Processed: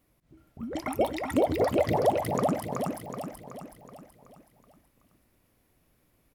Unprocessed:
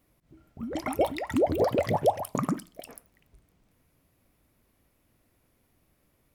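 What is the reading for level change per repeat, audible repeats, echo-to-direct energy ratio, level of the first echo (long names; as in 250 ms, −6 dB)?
−6.0 dB, 6, −2.5 dB, −4.0 dB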